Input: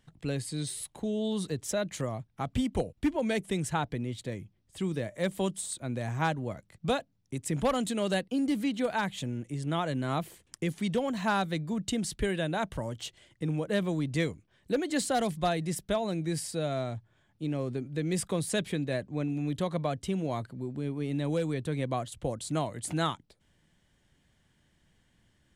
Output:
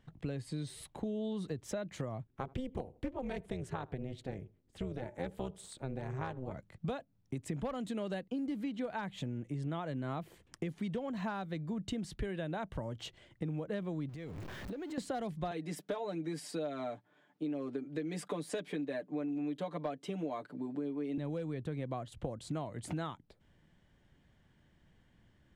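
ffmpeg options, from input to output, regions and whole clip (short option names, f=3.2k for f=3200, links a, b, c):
-filter_complex "[0:a]asettb=1/sr,asplit=3[a][b][c];[a]atrim=end=2.274[d];[b]atrim=start=2.27:end=6.54,asetpts=PTS-STARTPTS,afade=t=in:d=0.004:c=qsin,afade=t=out:st=4.266:d=0.004:c=qsin,tremolo=f=260:d=0.919,asplit=2[e][f];[f]adelay=79,lowpass=f=1.1k:p=1,volume=-23dB,asplit=2[g][h];[h]adelay=79,lowpass=f=1.1k:p=1,volume=0.3[i];[e][g][i]amix=inputs=3:normalize=0,atrim=end_sample=188307[j];[c]atrim=start=6.536[k];[d][j]acrossfade=d=0.004:c1=hsin:c2=qsin[l];[l][k]acrossfade=d=0.004:c1=qsin:c2=hsin,asettb=1/sr,asplit=3[m][n][o];[m]atrim=end=14.094[p];[n]atrim=start=14.09:end=14.98,asetpts=PTS-STARTPTS,afade=t=in:d=0.004:c=qsin,afade=t=out:st=0.886:d=0.004:c=qsin,aeval=exprs='val(0)+0.5*0.0106*sgn(val(0))':c=same,acompressor=threshold=-40dB:ratio=12:attack=3.2:release=140:knee=1:detection=peak[q];[o]atrim=start=14.976[r];[p][q]acrossfade=d=0.004:c1=hsin:c2=qsin[s];[s][r]acrossfade=d=0.004:c1=qsin:c2=hsin,asettb=1/sr,asplit=3[t][u][v];[t]atrim=end=15.514[w];[u]atrim=start=15.51:end=21.18,asetpts=PTS-STARTPTS,afade=t=in:d=0.004:c=qsin,afade=t=out:st=5.666:d=0.004:c=qsin,highpass=f=220:w=0.5412,highpass=f=220:w=1.3066,aecho=1:1:6.8:0.83,atrim=end_sample=250047,asoftclip=type=hard:threshold=-20dB[x];[v]atrim=start=21.176[y];[w][x]acrossfade=d=0.004:c1=hsin:c2=qsin[z];[z][y]acrossfade=d=0.004:c1=qsin:c2=hsin,highshelf=f=2.6k:g=-8.5,acompressor=threshold=-37dB:ratio=6,equalizer=f=10k:t=o:w=1.2:g=-6.5,volume=2dB"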